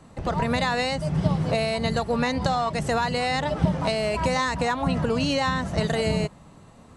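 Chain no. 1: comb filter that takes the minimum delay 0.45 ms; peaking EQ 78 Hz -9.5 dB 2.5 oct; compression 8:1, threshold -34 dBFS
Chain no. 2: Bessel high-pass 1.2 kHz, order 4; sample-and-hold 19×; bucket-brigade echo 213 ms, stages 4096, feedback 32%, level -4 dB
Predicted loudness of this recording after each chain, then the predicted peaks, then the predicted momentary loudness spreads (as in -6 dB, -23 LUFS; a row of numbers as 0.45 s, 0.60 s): -37.5 LUFS, -31.0 LUFS; -22.0 dBFS, -14.0 dBFS; 2 LU, 7 LU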